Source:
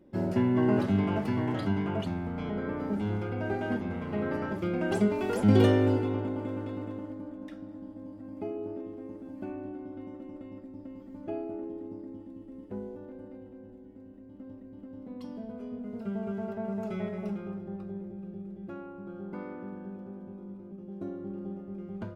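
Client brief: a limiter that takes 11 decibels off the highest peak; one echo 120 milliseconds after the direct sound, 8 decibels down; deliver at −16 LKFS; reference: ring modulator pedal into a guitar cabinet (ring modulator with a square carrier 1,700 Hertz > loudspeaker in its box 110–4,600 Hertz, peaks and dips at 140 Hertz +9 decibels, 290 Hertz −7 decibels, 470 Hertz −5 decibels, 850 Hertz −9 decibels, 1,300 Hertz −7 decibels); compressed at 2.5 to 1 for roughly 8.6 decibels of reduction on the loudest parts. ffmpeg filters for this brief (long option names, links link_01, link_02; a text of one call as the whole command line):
ffmpeg -i in.wav -af "acompressor=threshold=-29dB:ratio=2.5,alimiter=level_in=5dB:limit=-24dB:level=0:latency=1,volume=-5dB,aecho=1:1:120:0.398,aeval=exprs='val(0)*sgn(sin(2*PI*1700*n/s))':channel_layout=same,highpass=110,equalizer=frequency=140:width_type=q:width=4:gain=9,equalizer=frequency=290:width_type=q:width=4:gain=-7,equalizer=frequency=470:width_type=q:width=4:gain=-5,equalizer=frequency=850:width_type=q:width=4:gain=-9,equalizer=frequency=1300:width_type=q:width=4:gain=-7,lowpass=frequency=4600:width=0.5412,lowpass=frequency=4600:width=1.3066,volume=23dB" out.wav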